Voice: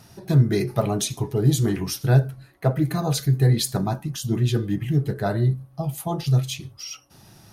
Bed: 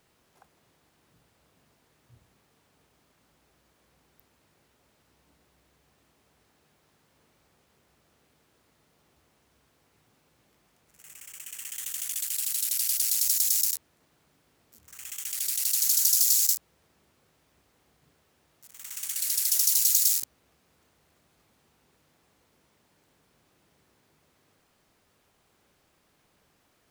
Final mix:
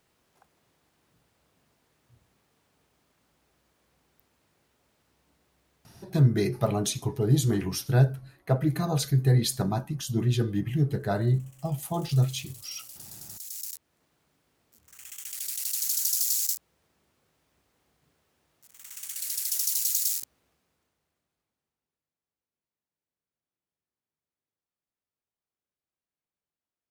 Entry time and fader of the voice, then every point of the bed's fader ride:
5.85 s, −3.5 dB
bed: 0:05.97 −3 dB
0:06.30 −19.5 dB
0:13.30 −19.5 dB
0:13.97 −4.5 dB
0:20.40 −4.5 dB
0:22.15 −29.5 dB

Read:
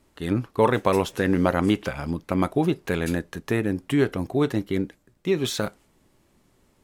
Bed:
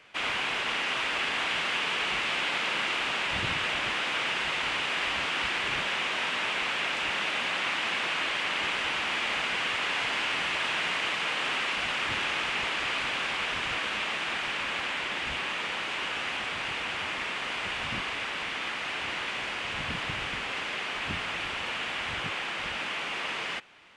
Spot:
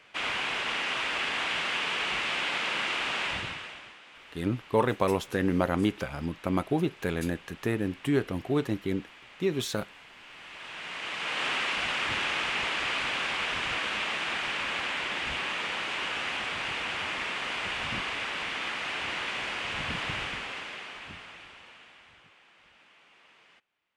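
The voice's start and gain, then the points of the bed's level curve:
4.15 s, −5.0 dB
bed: 0:03.28 −1 dB
0:04.00 −22 dB
0:10.16 −22 dB
0:11.43 0 dB
0:20.18 0 dB
0:22.34 −26 dB

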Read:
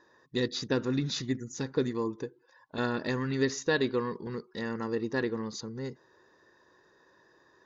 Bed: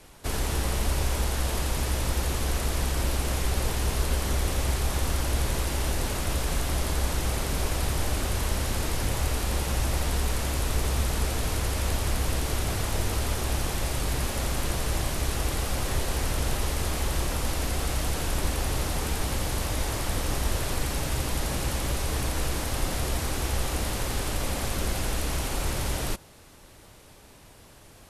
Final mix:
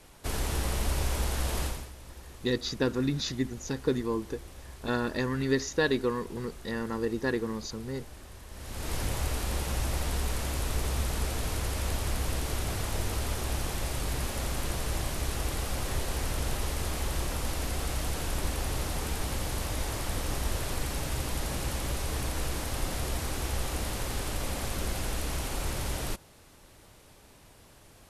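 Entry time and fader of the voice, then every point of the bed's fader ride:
2.10 s, +1.0 dB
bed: 0:01.65 −3 dB
0:01.93 −20 dB
0:08.47 −20 dB
0:08.93 −4 dB

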